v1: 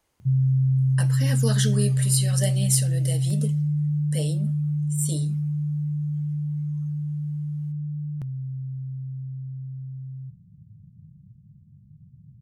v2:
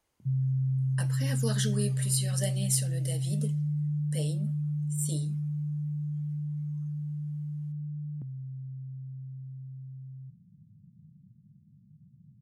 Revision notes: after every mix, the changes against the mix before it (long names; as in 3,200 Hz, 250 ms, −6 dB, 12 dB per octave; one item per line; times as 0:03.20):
speech −5.5 dB
background: add resonant band-pass 250 Hz, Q 1.6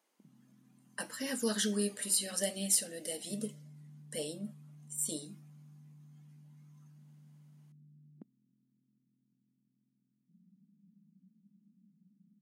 master: add linear-phase brick-wall high-pass 180 Hz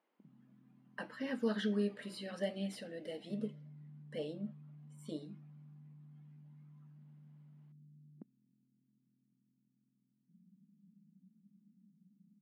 master: add high-frequency loss of the air 380 metres